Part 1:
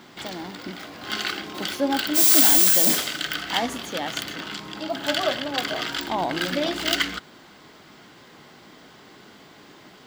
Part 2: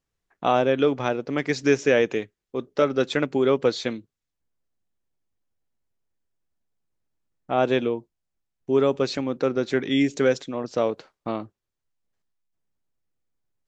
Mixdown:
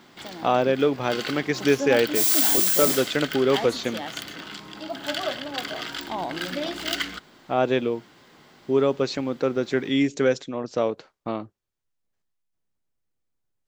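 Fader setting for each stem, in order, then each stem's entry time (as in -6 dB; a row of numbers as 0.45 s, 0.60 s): -4.5 dB, -0.5 dB; 0.00 s, 0.00 s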